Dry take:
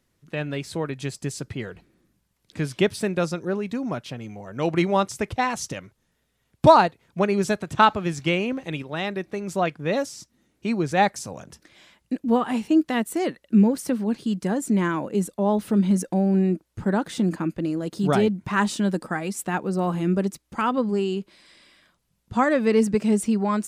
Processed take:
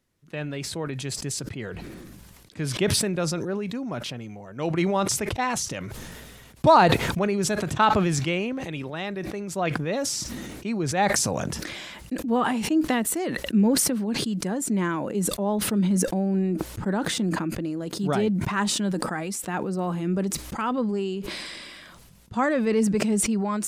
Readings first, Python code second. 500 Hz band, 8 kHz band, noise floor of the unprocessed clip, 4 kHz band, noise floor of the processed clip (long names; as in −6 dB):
−2.5 dB, +8.5 dB, −72 dBFS, +4.0 dB, −48 dBFS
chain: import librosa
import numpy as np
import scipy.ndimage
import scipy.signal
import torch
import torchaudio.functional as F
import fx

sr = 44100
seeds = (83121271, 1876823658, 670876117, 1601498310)

y = fx.sustainer(x, sr, db_per_s=24.0)
y = y * librosa.db_to_amplitude(-4.0)